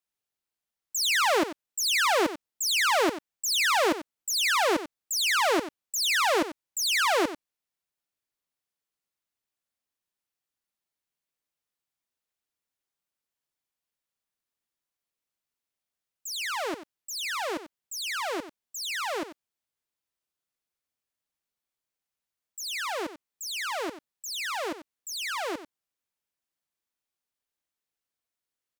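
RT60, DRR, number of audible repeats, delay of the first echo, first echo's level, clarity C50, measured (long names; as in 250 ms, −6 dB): no reverb audible, no reverb audible, 1, 92 ms, −12.5 dB, no reverb audible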